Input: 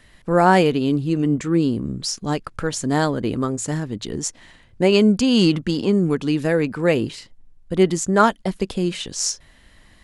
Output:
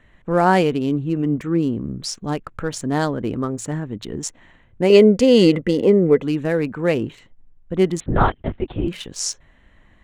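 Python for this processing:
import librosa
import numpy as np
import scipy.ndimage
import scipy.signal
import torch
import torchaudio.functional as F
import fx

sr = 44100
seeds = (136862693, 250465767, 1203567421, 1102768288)

y = fx.wiener(x, sr, points=9)
y = fx.small_body(y, sr, hz=(500.0, 2000.0), ring_ms=25, db=16, at=(4.9, 6.23))
y = fx.lpc_vocoder(y, sr, seeds[0], excitation='whisper', order=8, at=(8.0, 8.88))
y = y * 10.0 ** (-1.0 / 20.0)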